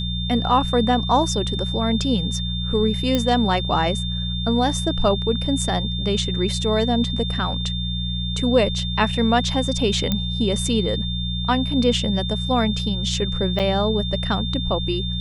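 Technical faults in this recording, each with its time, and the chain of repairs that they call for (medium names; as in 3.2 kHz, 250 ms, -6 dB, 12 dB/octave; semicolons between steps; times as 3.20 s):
hum 60 Hz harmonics 3 -26 dBFS
whine 3.6 kHz -28 dBFS
3.15 s: pop -7 dBFS
10.12 s: pop -8 dBFS
13.59–13.60 s: dropout 7.5 ms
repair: de-click; band-stop 3.6 kHz, Q 30; de-hum 60 Hz, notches 3; interpolate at 13.59 s, 7.5 ms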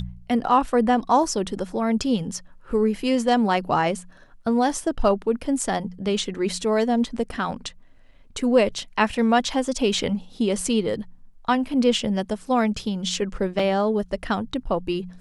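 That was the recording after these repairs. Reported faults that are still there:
10.12 s: pop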